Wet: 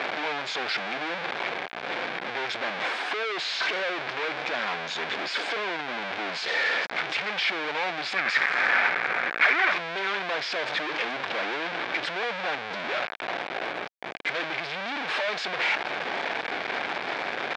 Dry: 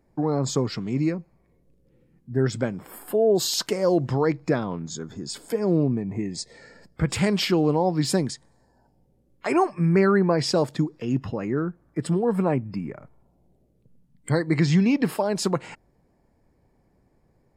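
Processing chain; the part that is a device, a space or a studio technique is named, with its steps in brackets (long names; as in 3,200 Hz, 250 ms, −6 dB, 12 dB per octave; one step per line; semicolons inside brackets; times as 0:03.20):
home computer beeper (sign of each sample alone; loudspeaker in its box 530–4,400 Hz, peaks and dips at 730 Hz +4 dB, 1,600 Hz +7 dB, 2,300 Hz +8 dB, 3,500 Hz +4 dB)
0:08.16–0:09.73: flat-topped bell 1,700 Hz +8.5 dB 1.2 octaves
level −2.5 dB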